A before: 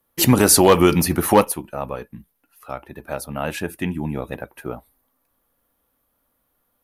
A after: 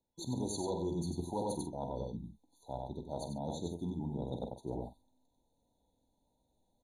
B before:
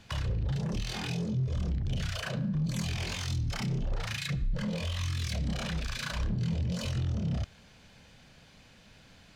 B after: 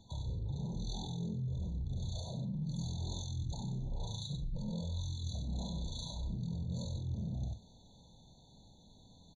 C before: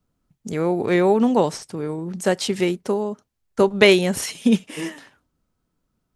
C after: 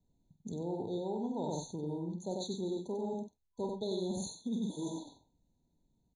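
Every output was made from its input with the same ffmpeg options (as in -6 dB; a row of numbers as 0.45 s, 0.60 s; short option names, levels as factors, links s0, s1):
-filter_complex "[0:a]lowpass=f=7800:w=0.5412,lowpass=f=7800:w=1.3066,equalizer=f=560:t=o:w=1.1:g=-4.5,asplit=2[s0][s1];[s1]adelay=47,volume=0.316[s2];[s0][s2]amix=inputs=2:normalize=0,asplit=2[s3][s4];[s4]aecho=0:1:94:0.562[s5];[s3][s5]amix=inputs=2:normalize=0,afftfilt=real='re*(1-between(b*sr/4096,1000,3400))':imag='im*(1-between(b*sr/4096,1000,3400))':win_size=4096:overlap=0.75,areverse,acompressor=threshold=0.0251:ratio=6,areverse,afftfilt=real='re*eq(mod(floor(b*sr/1024/1500),2),0)':imag='im*eq(mod(floor(b*sr/1024/1500),2),0)':win_size=1024:overlap=0.75,volume=0.708"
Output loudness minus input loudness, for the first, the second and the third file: -21.5 LU, -7.0 LU, -18.0 LU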